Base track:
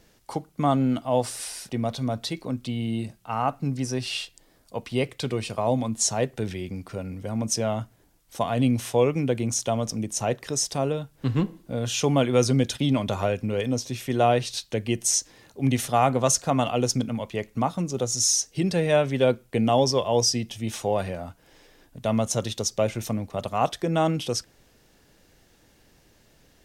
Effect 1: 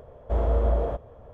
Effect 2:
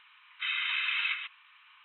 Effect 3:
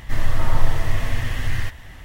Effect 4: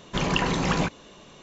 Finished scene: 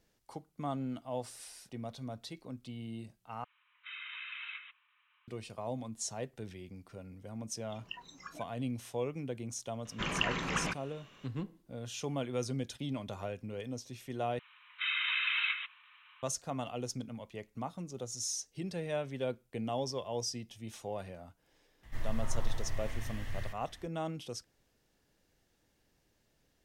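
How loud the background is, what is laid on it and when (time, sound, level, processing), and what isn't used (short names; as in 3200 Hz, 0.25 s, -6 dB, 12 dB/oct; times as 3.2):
base track -15 dB
3.44 replace with 2 -12.5 dB + LPF 3700 Hz
7.55 add 4 -16.5 dB + spectral noise reduction 21 dB
9.85 add 4 -13 dB + band shelf 1900 Hz +8 dB
14.39 replace with 2 -1.5 dB
21.83 add 3 -16.5 dB
not used: 1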